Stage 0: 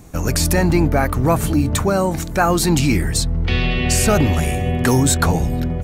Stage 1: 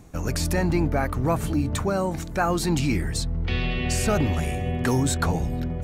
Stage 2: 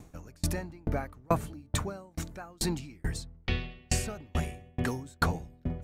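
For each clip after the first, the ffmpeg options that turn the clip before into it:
-af "areverse,acompressor=mode=upward:threshold=-22dB:ratio=2.5,areverse,highshelf=f=7.9k:g=-7,volume=-7dB"
-af "aeval=exprs='val(0)*pow(10,-37*if(lt(mod(2.3*n/s,1),2*abs(2.3)/1000),1-mod(2.3*n/s,1)/(2*abs(2.3)/1000),(mod(2.3*n/s,1)-2*abs(2.3)/1000)/(1-2*abs(2.3)/1000))/20)':c=same"

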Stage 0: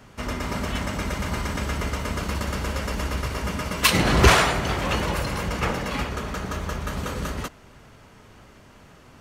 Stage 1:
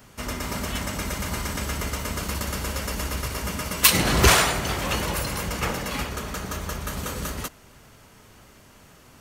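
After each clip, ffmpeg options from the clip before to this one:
-af "aemphasis=mode=production:type=50kf,volume=-2.5dB"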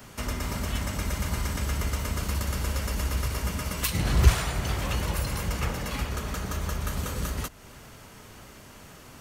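-filter_complex "[0:a]acrossover=split=130[a][b];[b]acompressor=threshold=-39dB:ratio=2.5[c];[a][c]amix=inputs=2:normalize=0,volume=3.5dB"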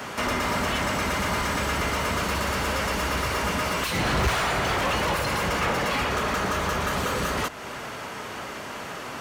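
-filter_complex "[0:a]asplit=2[a][b];[b]highpass=f=720:p=1,volume=34dB,asoftclip=type=tanh:threshold=-5dB[c];[a][c]amix=inputs=2:normalize=0,lowpass=f=1.7k:p=1,volume=-6dB,volume=-8dB"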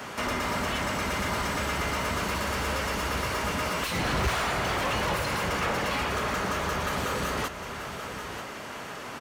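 -af "aecho=1:1:936:0.299,volume=-3.5dB"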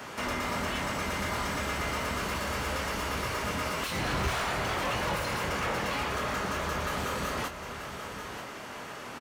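-filter_complex "[0:a]asplit=2[a][b];[b]adelay=25,volume=-8dB[c];[a][c]amix=inputs=2:normalize=0,volume=-3.5dB"

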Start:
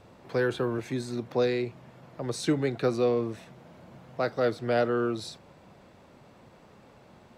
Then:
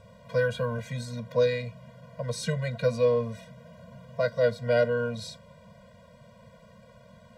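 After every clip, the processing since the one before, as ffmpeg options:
-af "afftfilt=real='re*eq(mod(floor(b*sr/1024/230),2),0)':imag='im*eq(mod(floor(b*sr/1024/230),2),0)':win_size=1024:overlap=0.75,volume=3.5dB"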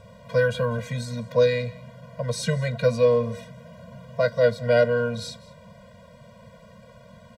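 -af "aecho=1:1:195:0.0891,volume=4.5dB"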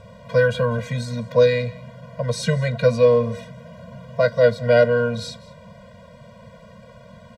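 -af "highshelf=f=8.4k:g=-7.5,volume=4dB"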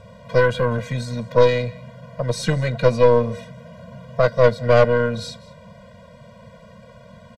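-af "aeval=exprs='0.708*(cos(1*acos(clip(val(0)/0.708,-1,1)))-cos(1*PI/2))+0.126*(cos(4*acos(clip(val(0)/0.708,-1,1)))-cos(4*PI/2))':c=same,aresample=32000,aresample=44100"

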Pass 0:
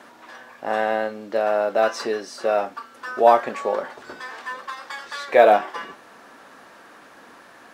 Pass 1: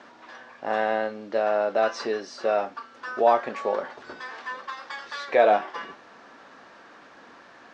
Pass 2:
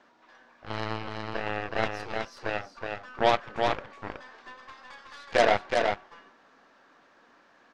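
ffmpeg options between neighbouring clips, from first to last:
-filter_complex "[0:a]lowpass=f=6.2k:w=0.5412,lowpass=f=6.2k:w=1.3066,asplit=2[a][b];[b]alimiter=limit=-11dB:level=0:latency=1:release=318,volume=-2dB[c];[a][c]amix=inputs=2:normalize=0,volume=-7.5dB"
-af "aeval=exprs='0.473*(cos(1*acos(clip(val(0)/0.473,-1,1)))-cos(1*PI/2))+0.0944*(cos(7*acos(clip(val(0)/0.473,-1,1)))-cos(7*PI/2))+0.0266*(cos(8*acos(clip(val(0)/0.473,-1,1)))-cos(8*PI/2))':c=same,aecho=1:1:371:0.631,volume=-3.5dB"

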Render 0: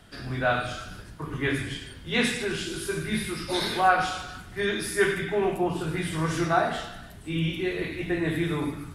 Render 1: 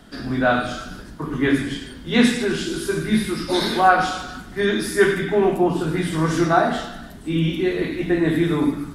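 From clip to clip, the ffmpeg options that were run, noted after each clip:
-af "equalizer=f=100:t=o:w=0.67:g=-9,equalizer=f=250:t=o:w=0.67:g=8,equalizer=f=2.5k:t=o:w=0.67:g=-5,equalizer=f=10k:t=o:w=0.67:g=-4,volume=6dB"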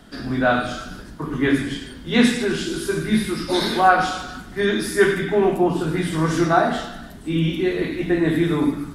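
-af anull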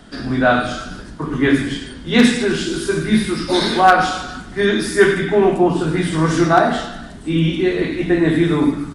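-af "aresample=22050,aresample=44100,aeval=exprs='0.562*(abs(mod(val(0)/0.562+3,4)-2)-1)':c=same,volume=4dB"

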